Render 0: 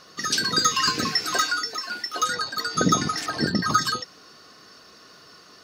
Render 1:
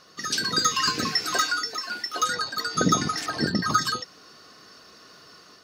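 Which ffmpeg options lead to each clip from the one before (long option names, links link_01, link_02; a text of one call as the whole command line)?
ffmpeg -i in.wav -af "dynaudnorm=framelen=240:gausssize=3:maxgain=3.5dB,volume=-4dB" out.wav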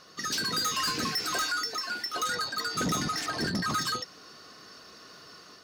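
ffmpeg -i in.wav -af "asoftclip=type=tanh:threshold=-25.5dB" out.wav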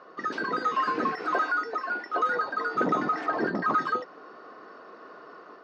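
ffmpeg -i in.wav -af "asuperpass=centerf=640:order=4:qfactor=0.62,volume=8.5dB" out.wav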